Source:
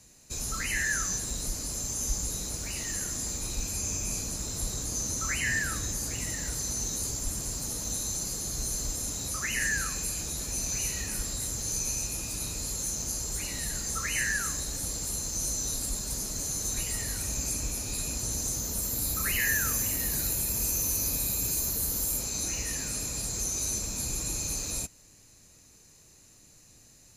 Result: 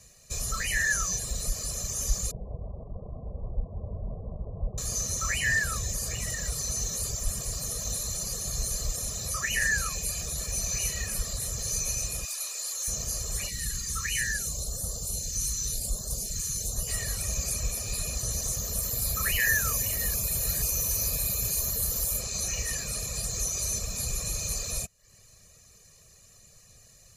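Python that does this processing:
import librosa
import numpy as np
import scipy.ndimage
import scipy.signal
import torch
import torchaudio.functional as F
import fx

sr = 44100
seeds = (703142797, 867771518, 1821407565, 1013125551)

y = fx.steep_lowpass(x, sr, hz=1000.0, slope=72, at=(2.31, 4.78))
y = fx.highpass(y, sr, hz=820.0, slope=12, at=(12.25, 12.88))
y = fx.phaser_stages(y, sr, stages=2, low_hz=650.0, high_hz=2300.0, hz=fx.line((13.48, 0.34), (16.87, 1.6)), feedback_pct=0, at=(13.48, 16.87), fade=0.02)
y = fx.edit(y, sr, fx.reverse_span(start_s=20.14, length_s=0.48), tone=tone)
y = y + 0.83 * np.pad(y, (int(1.7 * sr / 1000.0), 0))[:len(y)]
y = fx.dereverb_blind(y, sr, rt60_s=0.53)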